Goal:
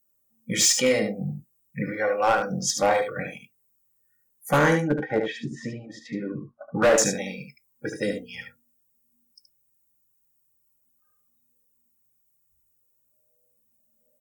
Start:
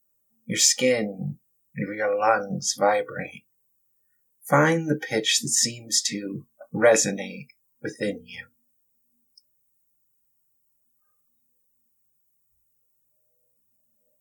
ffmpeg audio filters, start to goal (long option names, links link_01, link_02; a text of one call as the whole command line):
ffmpeg -i in.wav -filter_complex "[0:a]asettb=1/sr,asplit=3[link_01][link_02][link_03];[link_01]atrim=end=4.804[link_04];[link_02]atrim=start=4.8:end=6.98,asetpts=PTS-STARTPTS,afade=type=in:duration=0.004:curve=qsin,afade=type=out:start_time=2.176:duration=0.004:curve=qsin,lowpass=frequency=1200:width_type=q:width=2.4[link_05];[link_03]atrim=start=6.976[link_06];[link_04][link_05]acrossfade=duration=0.004:curve1=hsin:curve2=qsin[link_07];[link_07][link_06]acrossfade=duration=0.004:curve1=qsin:curve2=hsin,asoftclip=type=hard:threshold=-14.5dB,aecho=1:1:74:0.473" out.wav